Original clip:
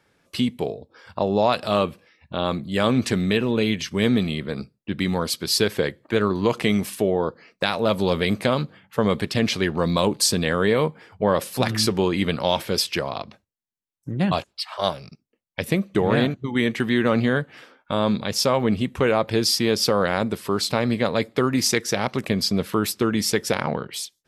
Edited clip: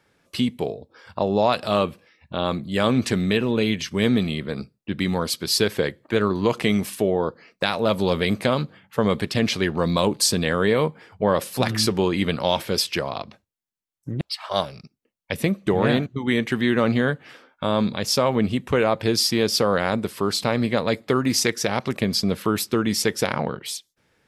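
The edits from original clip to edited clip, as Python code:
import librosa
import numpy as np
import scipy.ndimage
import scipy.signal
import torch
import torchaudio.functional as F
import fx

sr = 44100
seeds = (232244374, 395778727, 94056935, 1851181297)

y = fx.edit(x, sr, fx.cut(start_s=14.21, length_s=0.28), tone=tone)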